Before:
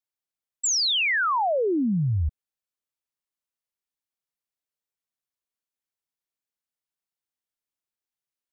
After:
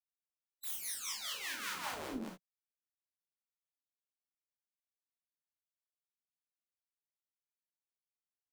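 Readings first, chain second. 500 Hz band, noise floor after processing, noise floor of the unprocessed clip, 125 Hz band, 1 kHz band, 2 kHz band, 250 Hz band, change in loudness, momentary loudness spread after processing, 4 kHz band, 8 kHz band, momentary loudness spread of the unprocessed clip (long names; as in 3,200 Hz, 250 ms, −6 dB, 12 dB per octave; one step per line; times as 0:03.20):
−23.5 dB, below −85 dBFS, below −85 dBFS, −34.0 dB, −19.5 dB, −17.5 dB, −19.5 dB, −17.0 dB, 7 LU, −17.5 dB, can't be measured, 8 LU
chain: sub-harmonics by changed cycles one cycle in 2, muted
gate on every frequency bin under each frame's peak −15 dB weak
brickwall limiter −34.5 dBFS, peak gain reduction 9 dB
two-band tremolo in antiphase 5.1 Hz, depth 70%, crossover 520 Hz
reverb whose tail is shaped and stops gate 90 ms flat, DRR −1 dB
level +4.5 dB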